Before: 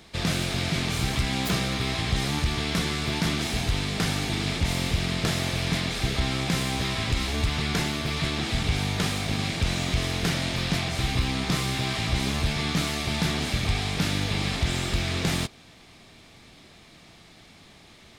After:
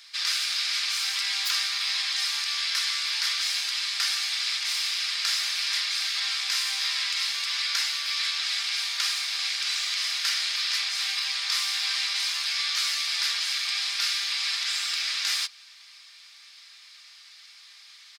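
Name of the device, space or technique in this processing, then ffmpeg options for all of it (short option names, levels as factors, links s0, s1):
headphones lying on a table: -filter_complex "[0:a]asettb=1/sr,asplit=3[s0][s1][s2];[s0]atrim=end=2.314[s3];[s1]atrim=start=2.31:end=3.2,asetpts=PTS-STARTPTS,afade=t=in:d=0.004:c=qsin,afade=t=out:st=0.886:d=0.004:c=qsin,highpass=230[s4];[s2]atrim=start=3.196[s5];[s3][s4]acrossfade=d=0.004:c1=hsin:c2=qsin[s6];[s6][s5]acrossfade=d=0.004:c1=qsin:c2=hsin,highpass=f=1300:w=0.5412,highpass=f=1300:w=1.3066,equalizer=f=4900:t=o:w=0.56:g=10,aecho=1:1:5:0.36"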